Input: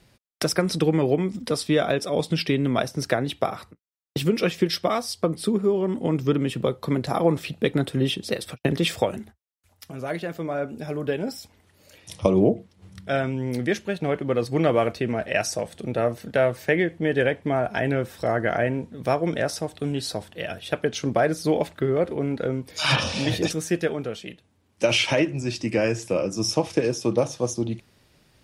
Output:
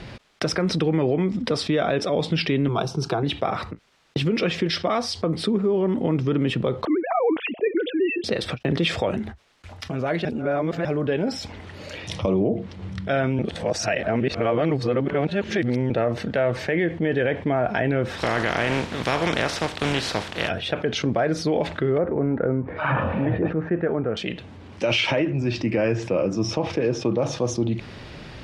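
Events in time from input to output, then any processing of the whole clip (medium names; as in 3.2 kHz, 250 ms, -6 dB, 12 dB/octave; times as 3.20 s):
2.68–3.23 s: static phaser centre 380 Hz, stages 8
6.85–8.24 s: formants replaced by sine waves
10.25–10.85 s: reverse
13.39–15.90 s: reverse
18.17–20.48 s: spectral contrast reduction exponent 0.42
21.98–24.17 s: low-pass 1.7 kHz 24 dB/octave
25.11–27.23 s: low-pass 3 kHz 6 dB/octave
whole clip: low-pass 3.7 kHz 12 dB/octave; peak limiter -14.5 dBFS; level flattener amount 50%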